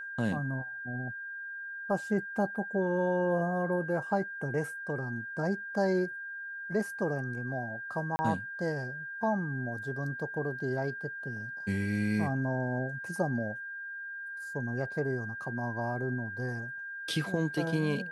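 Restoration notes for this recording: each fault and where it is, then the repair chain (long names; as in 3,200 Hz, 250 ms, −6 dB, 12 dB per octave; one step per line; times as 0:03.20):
whistle 1,600 Hz −38 dBFS
0:08.16–0:08.19: drop-out 30 ms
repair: notch filter 1,600 Hz, Q 30
repair the gap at 0:08.16, 30 ms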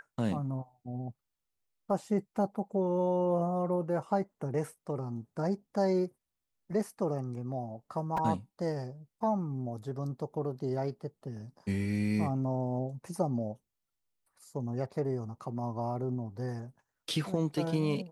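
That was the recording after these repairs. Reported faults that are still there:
none of them is left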